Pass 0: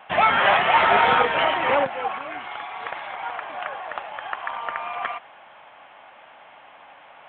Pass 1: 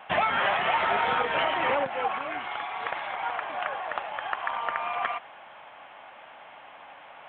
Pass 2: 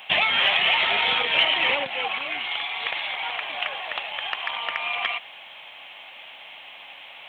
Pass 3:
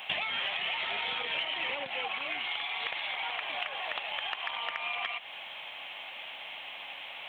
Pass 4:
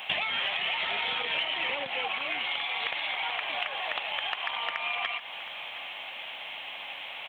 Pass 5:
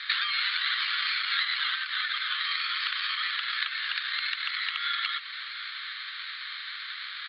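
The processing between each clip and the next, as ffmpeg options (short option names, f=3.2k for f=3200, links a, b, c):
-af "acompressor=threshold=-22dB:ratio=6"
-af "aexciter=amount=8.7:drive=3.8:freq=2.2k,volume=-2.5dB"
-af "acompressor=threshold=-32dB:ratio=5"
-af "aecho=1:1:718:0.168,volume=3dB"
-af "aeval=exprs='val(0)*sin(2*PI*1000*n/s)':c=same,asuperpass=centerf=2700:order=12:qfactor=0.59,volume=5.5dB"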